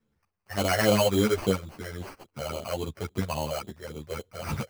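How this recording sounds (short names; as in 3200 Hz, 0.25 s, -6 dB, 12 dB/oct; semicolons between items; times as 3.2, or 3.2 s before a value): phasing stages 6, 3.6 Hz, lowest notch 230–2300 Hz; aliases and images of a low sample rate 3600 Hz, jitter 0%; random-step tremolo; a shimmering, thickened sound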